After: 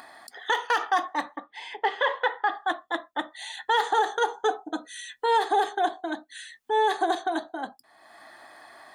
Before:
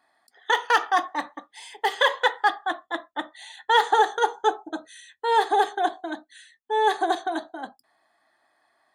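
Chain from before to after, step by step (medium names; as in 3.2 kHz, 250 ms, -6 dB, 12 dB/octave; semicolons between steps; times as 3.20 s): 1.36–2.55 s: low-pass 2.7 kHz 12 dB/octave; 4.42–5.26 s: comb 4.1 ms, depth 59%; in parallel at +2 dB: upward compressor, threshold -25 dBFS; on the sum: peak limiter -6.5 dBFS, peak gain reduction 7 dB; trim -7 dB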